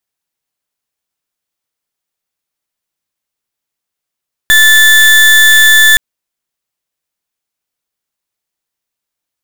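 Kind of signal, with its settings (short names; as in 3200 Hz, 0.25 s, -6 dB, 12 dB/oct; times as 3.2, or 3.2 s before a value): pulse 1750 Hz, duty 32% -5 dBFS 1.47 s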